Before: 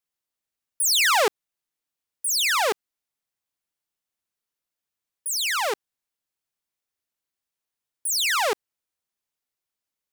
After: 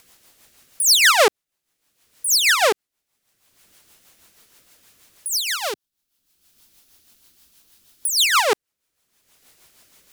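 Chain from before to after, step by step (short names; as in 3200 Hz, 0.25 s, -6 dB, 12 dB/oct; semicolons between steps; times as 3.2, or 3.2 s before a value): 5.28–8.13 graphic EQ 125/500/1000/2000/8000 Hz -6/-9/-5/-8/-4 dB; in parallel at -1.5 dB: upward compressor, threshold -26 dBFS; on the sum: rotary speaker horn 6.3 Hz; gain +3 dB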